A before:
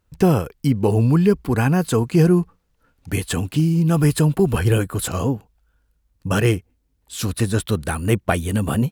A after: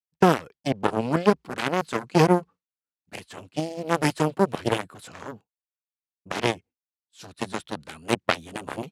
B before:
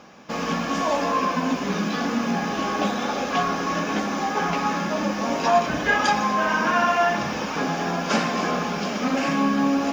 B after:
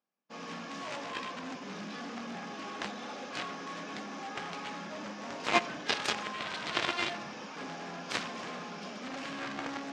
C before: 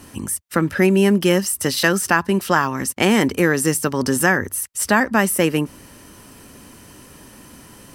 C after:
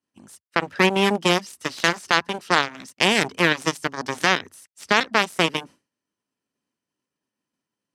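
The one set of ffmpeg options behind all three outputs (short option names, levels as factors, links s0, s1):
-af "aeval=exprs='0.891*(cos(1*acos(clip(val(0)/0.891,-1,1)))-cos(1*PI/2))+0.224*(cos(3*acos(clip(val(0)/0.891,-1,1)))-cos(3*PI/2))+0.00708*(cos(4*acos(clip(val(0)/0.891,-1,1)))-cos(4*PI/2))+0.00891*(cos(5*acos(clip(val(0)/0.891,-1,1)))-cos(5*PI/2))+0.0562*(cos(7*acos(clip(val(0)/0.891,-1,1)))-cos(7*PI/2))':c=same,agate=range=0.0224:threshold=0.00794:ratio=3:detection=peak,apsyclip=2.82,highpass=150,lowpass=5000,aemphasis=mode=production:type=cd,volume=0.708"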